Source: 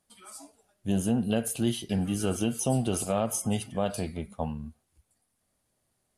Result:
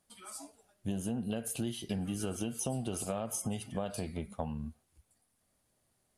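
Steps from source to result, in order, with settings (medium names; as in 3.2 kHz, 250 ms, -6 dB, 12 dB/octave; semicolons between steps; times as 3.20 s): compression, threshold -32 dBFS, peak gain reduction 11 dB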